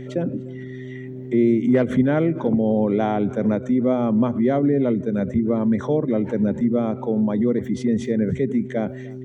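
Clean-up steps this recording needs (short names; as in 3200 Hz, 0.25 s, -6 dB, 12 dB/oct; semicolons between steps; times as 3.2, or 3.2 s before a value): de-hum 128.2 Hz, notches 3; inverse comb 0.297 s -23.5 dB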